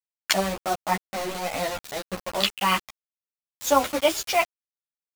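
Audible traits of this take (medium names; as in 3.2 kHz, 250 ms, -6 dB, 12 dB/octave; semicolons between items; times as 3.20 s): tremolo triangle 3.4 Hz, depth 35%; a quantiser's noise floor 6-bit, dither none; a shimmering, thickened sound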